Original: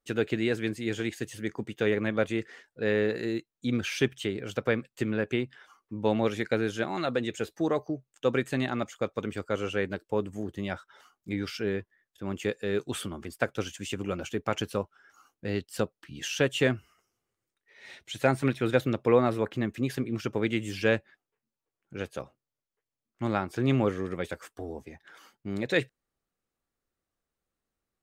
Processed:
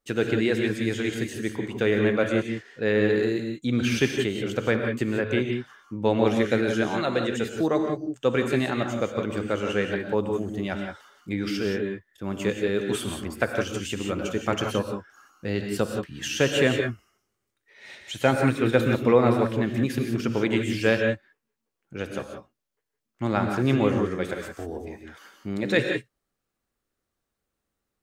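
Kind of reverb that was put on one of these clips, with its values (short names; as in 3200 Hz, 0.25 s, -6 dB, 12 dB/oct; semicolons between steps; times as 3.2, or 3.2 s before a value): non-linear reverb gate 0.2 s rising, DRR 3.5 dB; gain +3 dB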